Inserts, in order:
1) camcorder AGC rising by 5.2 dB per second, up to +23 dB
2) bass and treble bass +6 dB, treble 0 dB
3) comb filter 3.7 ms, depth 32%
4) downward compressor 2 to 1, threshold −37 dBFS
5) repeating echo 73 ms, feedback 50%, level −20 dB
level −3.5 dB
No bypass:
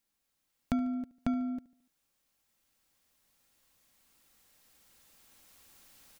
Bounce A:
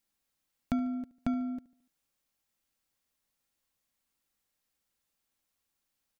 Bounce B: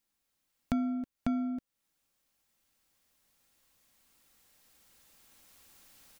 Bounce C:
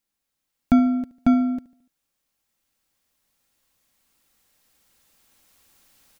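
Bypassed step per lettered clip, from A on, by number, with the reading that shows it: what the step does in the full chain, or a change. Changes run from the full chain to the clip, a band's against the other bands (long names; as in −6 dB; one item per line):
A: 1, change in crest factor −1.5 dB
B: 5, echo-to-direct ratio −19.0 dB to none audible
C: 4, average gain reduction 12.5 dB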